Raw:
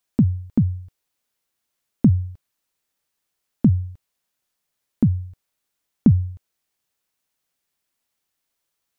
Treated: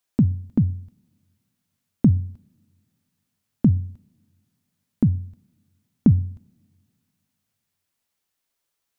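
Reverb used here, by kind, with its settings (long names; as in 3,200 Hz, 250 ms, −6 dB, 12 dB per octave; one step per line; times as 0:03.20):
coupled-rooms reverb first 0.57 s, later 2.2 s, from −18 dB, DRR 20 dB
level −1 dB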